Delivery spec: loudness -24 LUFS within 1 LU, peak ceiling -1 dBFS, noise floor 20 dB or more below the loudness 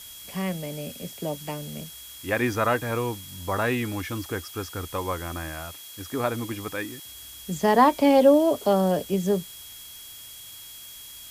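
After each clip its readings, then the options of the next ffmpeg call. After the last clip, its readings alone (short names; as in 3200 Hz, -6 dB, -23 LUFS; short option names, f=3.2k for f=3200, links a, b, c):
steady tone 3300 Hz; tone level -46 dBFS; noise floor -43 dBFS; noise floor target -46 dBFS; loudness -25.5 LUFS; peak -5.5 dBFS; loudness target -24.0 LUFS
-> -af "bandreject=f=3.3k:w=30"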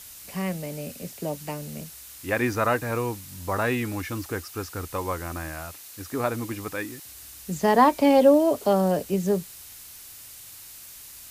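steady tone none; noise floor -44 dBFS; noise floor target -45 dBFS
-> -af "afftdn=nr=6:nf=-44"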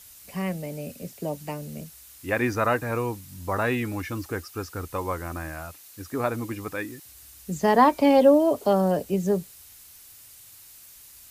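noise floor -49 dBFS; loudness -25.0 LUFS; peak -5.5 dBFS; loudness target -24.0 LUFS
-> -af "volume=1dB"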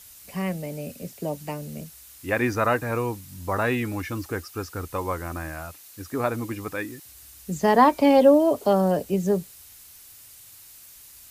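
loudness -24.0 LUFS; peak -4.5 dBFS; noise floor -48 dBFS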